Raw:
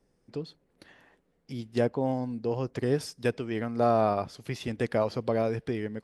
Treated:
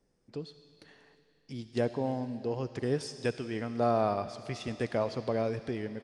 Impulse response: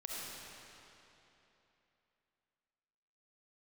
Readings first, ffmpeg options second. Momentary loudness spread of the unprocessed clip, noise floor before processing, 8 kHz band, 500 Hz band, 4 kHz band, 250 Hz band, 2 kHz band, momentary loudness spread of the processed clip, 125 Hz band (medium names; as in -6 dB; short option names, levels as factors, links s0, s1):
14 LU, -72 dBFS, -1.5 dB, -3.5 dB, -1.5 dB, -3.5 dB, -3.0 dB, 14 LU, -3.5 dB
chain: -filter_complex "[0:a]asplit=2[s0][s1];[s1]equalizer=f=5500:t=o:w=2.3:g=12[s2];[1:a]atrim=start_sample=2205[s3];[s2][s3]afir=irnorm=-1:irlink=0,volume=0.188[s4];[s0][s4]amix=inputs=2:normalize=0,aresample=22050,aresample=44100,volume=0.596"